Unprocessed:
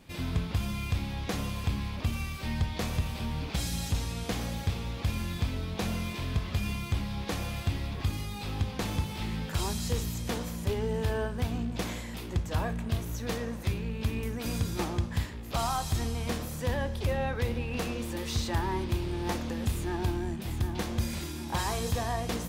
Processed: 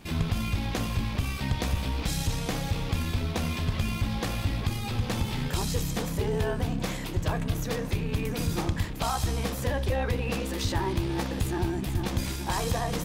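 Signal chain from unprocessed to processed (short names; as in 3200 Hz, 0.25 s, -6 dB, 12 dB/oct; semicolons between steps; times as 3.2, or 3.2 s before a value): in parallel at +1 dB: limiter -28.5 dBFS, peak gain reduction 9 dB; on the sum: granular stretch 0.58×, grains 30 ms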